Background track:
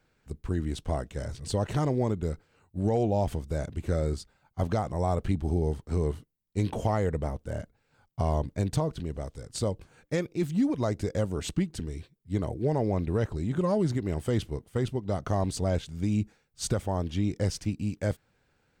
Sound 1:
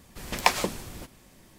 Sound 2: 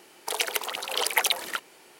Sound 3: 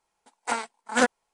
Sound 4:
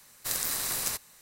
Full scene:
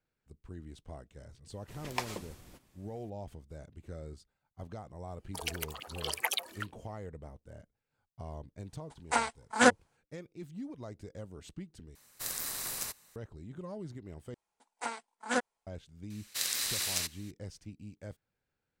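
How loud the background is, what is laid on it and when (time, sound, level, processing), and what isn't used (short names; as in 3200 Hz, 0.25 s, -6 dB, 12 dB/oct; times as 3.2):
background track -16.5 dB
1.52 add 1 -13.5 dB
5.07 add 2 -7.5 dB + per-bin expansion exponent 1.5
8.64 add 3 -1 dB
11.95 replace with 4 -6.5 dB
14.34 replace with 3 -9.5 dB
16.1 add 4 -8 dB + weighting filter D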